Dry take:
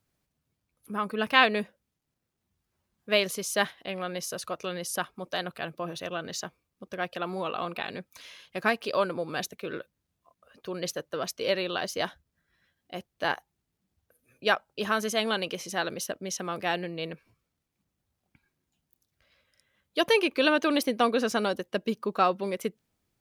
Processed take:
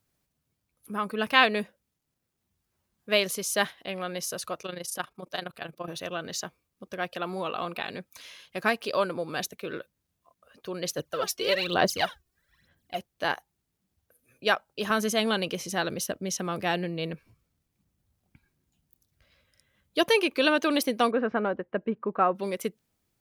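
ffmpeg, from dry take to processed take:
ffmpeg -i in.wav -filter_complex "[0:a]asettb=1/sr,asplit=3[link_01][link_02][link_03];[link_01]atrim=end=4.624[link_04];[link_02]atrim=start=4.62:end=5.88,asetpts=PTS-STARTPTS,afade=type=in:duration=0.004:curve=qsin,afade=type=out:start_time=1.256:duration=0.004:curve=qsin,tremolo=f=26:d=0.75[link_05];[link_03]atrim=start=5.876[link_06];[link_04][link_05]acrossfade=duration=0.004:curve1=hsin:curve2=qsin[link_07];[link_07][link_06]acrossfade=duration=0.004:curve1=qsin:curve2=hsin,asplit=3[link_08][link_09][link_10];[link_08]afade=type=out:start_time=10.97:duration=0.02[link_11];[link_09]aphaser=in_gain=1:out_gain=1:delay=2.8:decay=0.74:speed=1.1:type=sinusoidal,afade=type=in:start_time=10.97:duration=0.02,afade=type=out:start_time=12.97:duration=0.02[link_12];[link_10]afade=type=in:start_time=12.97:duration=0.02[link_13];[link_11][link_12][link_13]amix=inputs=3:normalize=0,asettb=1/sr,asplit=3[link_14][link_15][link_16];[link_14]atrim=end=14.904[link_17];[link_15]atrim=start=14.9:end=20.03,asetpts=PTS-STARTPTS,afade=type=in:duration=0.004:curve=qsin,afade=type=out:start_time=5.126:duration=0.004:curve=qsin,lowshelf=frequency=230:gain=9[link_18];[link_16]atrim=start=20.026[link_19];[link_17][link_18]acrossfade=duration=0.004:curve1=hsin:curve2=qsin[link_20];[link_20][link_19]acrossfade=duration=0.004:curve1=qsin:curve2=hsin,asettb=1/sr,asplit=3[link_21][link_22][link_23];[link_21]atrim=end=21.114[link_24];[link_22]atrim=start=21.11:end=22.35,asetpts=PTS-STARTPTS,afade=type=in:duration=0.004:curve=qsin,afade=type=out:start_time=1.236:duration=0.004:curve=qsin,lowpass=frequency=2000:width=0.5412,lowpass=frequency=2000:width=1.3066[link_25];[link_23]atrim=start=22.346[link_26];[link_24][link_25]acrossfade=duration=0.004:curve1=hsin:curve2=qsin[link_27];[link_27][link_26]acrossfade=duration=0.004:curve1=qsin:curve2=hsin,highshelf=frequency=6500:gain=4.5" out.wav

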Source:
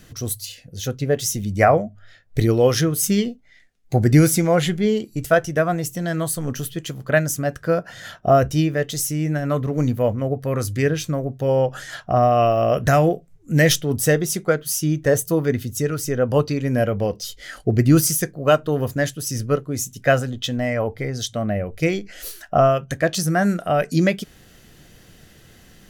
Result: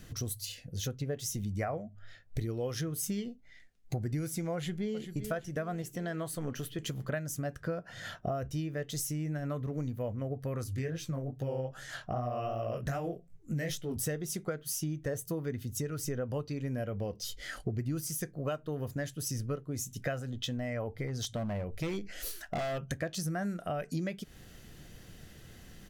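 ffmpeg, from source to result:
ffmpeg -i in.wav -filter_complex "[0:a]asplit=2[link_01][link_02];[link_02]afade=type=in:start_time=4.55:duration=0.01,afade=type=out:start_time=5.18:duration=0.01,aecho=0:1:390|780|1170|1560|1950|2340:0.199526|0.109739|0.0603567|0.0331962|0.0182579|0.0100418[link_03];[link_01][link_03]amix=inputs=2:normalize=0,asettb=1/sr,asplit=3[link_04][link_05][link_06];[link_04]atrim=end=5.824[link_07];[link_05]atrim=start=5.82:end=6.79,asetpts=PTS-STARTPTS,afade=type=in:duration=0.004:curve=qsin,afade=type=out:start_time=0.966:duration=0.004:curve=qsin,bass=frequency=250:gain=-7,treble=frequency=4000:gain=-7[link_08];[link_06]atrim=start=6.786[link_09];[link_07][link_08]acrossfade=duration=0.004:curve1=hsin:curve2=qsin[link_10];[link_10][link_09]acrossfade=duration=0.004:curve1=qsin:curve2=hsin,asettb=1/sr,asplit=3[link_11][link_12][link_13];[link_11]atrim=end=7.604[link_14];[link_12]atrim=start=7.6:end=8.12,asetpts=PTS-STARTPTS,afade=type=in:duration=0.004:curve=qsin,afade=type=out:start_time=0.516:duration=0.004:curve=qsin,highshelf=frequency=7900:gain=-6.5[link_15];[link_13]atrim=start=8.116[link_16];[link_14][link_15]acrossfade=duration=0.004:curve1=hsin:curve2=qsin[link_17];[link_17][link_16]acrossfade=duration=0.004:curve1=qsin:curve2=hsin,asettb=1/sr,asplit=3[link_18][link_19][link_20];[link_18]atrim=end=10.644[link_21];[link_19]atrim=start=10.64:end=13.96,asetpts=PTS-STARTPTS,afade=type=in:duration=0.004:curve=qsin,afade=type=out:start_time=3.316:duration=0.004:curve=qsin,flanger=delay=15.5:depth=7.9:speed=2.5[link_22];[link_20]atrim=start=13.956[link_23];[link_21][link_22]acrossfade=duration=0.004:curve1=hsin:curve2=qsin[link_24];[link_24][link_23]acrossfade=duration=0.004:curve1=qsin:curve2=hsin,asettb=1/sr,asplit=3[link_25][link_26][link_27];[link_25]atrim=end=21.074[link_28];[link_26]atrim=start=21.07:end=22.92,asetpts=PTS-STARTPTS,afade=type=in:duration=0.004:curve=qsin,afade=type=out:start_time=1.846:duration=0.004:curve=qsin,volume=20.5dB,asoftclip=hard,volume=-20.5dB[link_29];[link_27]atrim=start=22.916[link_30];[link_28][link_29]acrossfade=duration=0.004:curve1=hsin:curve2=qsin[link_31];[link_31][link_30]acrossfade=duration=0.004:curve1=qsin:curve2=hsin,lowshelf=frequency=170:gain=5,acompressor=threshold=-27dB:ratio=6,volume=-5.5dB" out.wav

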